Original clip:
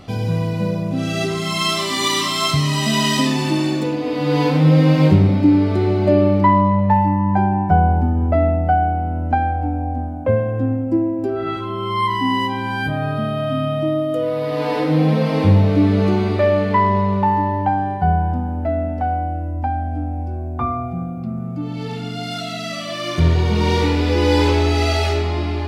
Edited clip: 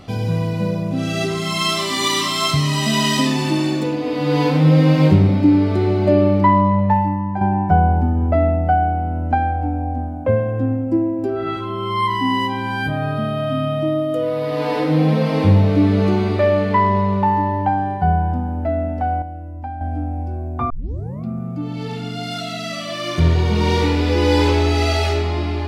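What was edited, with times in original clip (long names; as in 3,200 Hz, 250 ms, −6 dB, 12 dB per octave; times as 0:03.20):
0:06.82–0:07.41: fade out, to −8 dB
0:19.22–0:19.81: clip gain −7.5 dB
0:20.70: tape start 0.55 s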